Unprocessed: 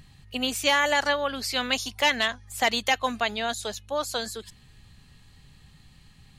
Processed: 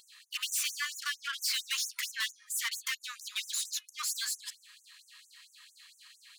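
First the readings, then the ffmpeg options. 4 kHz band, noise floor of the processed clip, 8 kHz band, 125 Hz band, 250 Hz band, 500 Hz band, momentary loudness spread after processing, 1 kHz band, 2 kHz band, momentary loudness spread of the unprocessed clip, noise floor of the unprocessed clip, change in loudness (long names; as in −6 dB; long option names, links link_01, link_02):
−7.0 dB, −65 dBFS, +1.5 dB, below −40 dB, below −40 dB, below −40 dB, 7 LU, −20.0 dB, −11.0 dB, 9 LU, −55 dBFS, −8.0 dB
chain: -af "acompressor=threshold=-24dB:ratio=6,aeval=exprs='(tanh(56.2*val(0)+0.3)-tanh(0.3))/56.2':channel_layout=same,afftfilt=real='re*gte(b*sr/1024,930*pow(6000/930,0.5+0.5*sin(2*PI*4.4*pts/sr)))':imag='im*gte(b*sr/1024,930*pow(6000/930,0.5+0.5*sin(2*PI*4.4*pts/sr)))':win_size=1024:overlap=0.75,volume=7.5dB"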